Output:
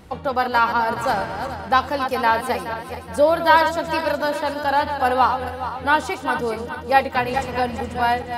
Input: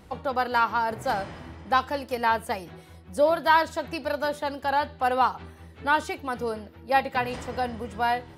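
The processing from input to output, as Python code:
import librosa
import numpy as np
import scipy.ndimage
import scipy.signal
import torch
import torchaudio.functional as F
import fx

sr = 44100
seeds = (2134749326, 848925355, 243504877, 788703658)

y = fx.reverse_delay_fb(x, sr, ms=211, feedback_pct=63, wet_db=-8)
y = F.gain(torch.from_numpy(y), 5.0).numpy()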